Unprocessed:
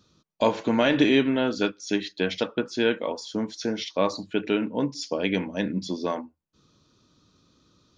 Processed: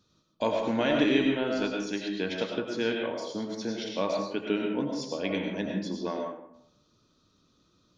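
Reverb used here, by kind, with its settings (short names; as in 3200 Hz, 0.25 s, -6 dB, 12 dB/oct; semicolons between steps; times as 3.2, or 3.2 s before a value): digital reverb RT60 0.74 s, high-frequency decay 0.55×, pre-delay 60 ms, DRR 1 dB; gain -6.5 dB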